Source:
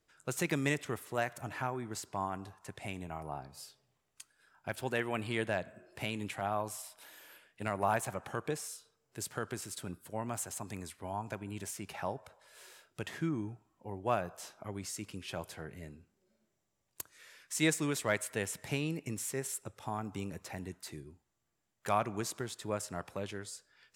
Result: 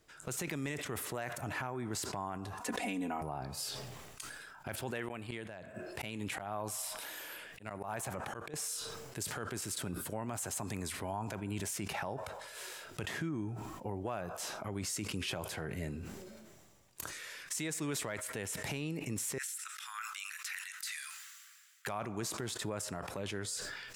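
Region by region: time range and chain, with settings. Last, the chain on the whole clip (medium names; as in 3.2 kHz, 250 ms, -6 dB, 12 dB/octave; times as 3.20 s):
2.60–3.21 s: resonant low shelf 180 Hz -10 dB, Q 3 + comb 4.1 ms, depth 93%
5.06–8.54 s: slow attack 584 ms + inverted gate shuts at -27 dBFS, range -25 dB
19.38–21.87 s: steep high-pass 1.3 kHz 48 dB/octave + compression, threshold -46 dBFS
whole clip: compression 6:1, threshold -44 dBFS; peak limiter -37 dBFS; decay stretcher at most 29 dB/s; trim +9.5 dB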